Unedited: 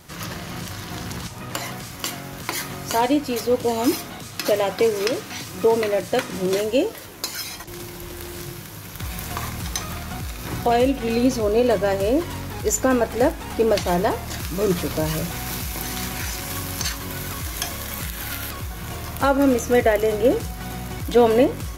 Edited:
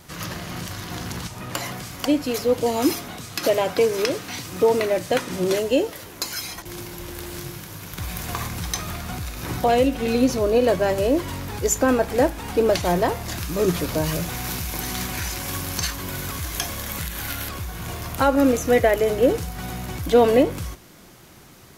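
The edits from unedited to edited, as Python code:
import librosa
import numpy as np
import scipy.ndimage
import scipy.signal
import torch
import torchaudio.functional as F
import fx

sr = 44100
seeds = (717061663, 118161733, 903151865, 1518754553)

y = fx.edit(x, sr, fx.cut(start_s=2.05, length_s=1.02), tone=tone)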